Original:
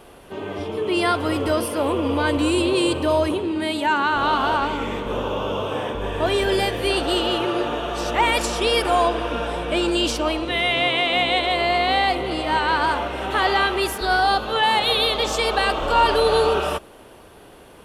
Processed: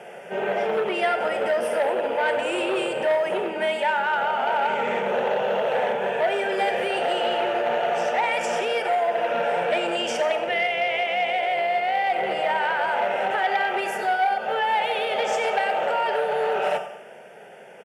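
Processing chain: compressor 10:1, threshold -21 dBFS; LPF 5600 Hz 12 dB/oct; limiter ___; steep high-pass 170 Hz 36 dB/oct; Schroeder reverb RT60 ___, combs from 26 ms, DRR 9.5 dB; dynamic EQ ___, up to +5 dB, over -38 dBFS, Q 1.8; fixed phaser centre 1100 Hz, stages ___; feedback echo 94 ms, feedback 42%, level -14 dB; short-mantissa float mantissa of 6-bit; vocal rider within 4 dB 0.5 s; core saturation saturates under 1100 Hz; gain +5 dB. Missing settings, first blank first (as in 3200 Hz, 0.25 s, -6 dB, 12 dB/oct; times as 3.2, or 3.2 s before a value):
-17 dBFS, 0.73 s, 850 Hz, 6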